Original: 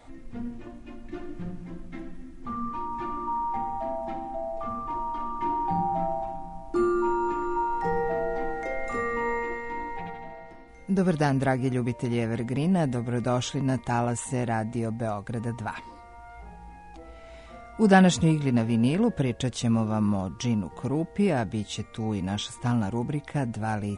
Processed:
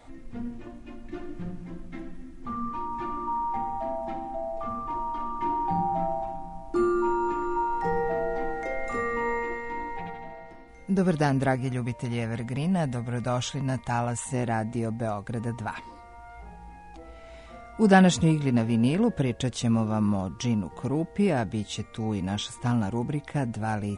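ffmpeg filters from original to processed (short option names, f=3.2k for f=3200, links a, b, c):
-filter_complex "[0:a]asettb=1/sr,asplit=3[a][b][c];[a]atrim=end=11.554[d];[b]atrim=start=11.55:end=14.34,asetpts=PTS-STARTPTS,afade=t=in:d=0.004:c=qsin,afade=t=out:st=2.786:d=0.004:c=qsin,equalizer=f=340:t=o:w=0.87:g=-8.5[e];[c]atrim=start=14.336[f];[d][e]acrossfade=d=0.004:c1=hsin:c2=qsin[g];[g][f]acrossfade=d=0.004:c1=qsin:c2=hsin"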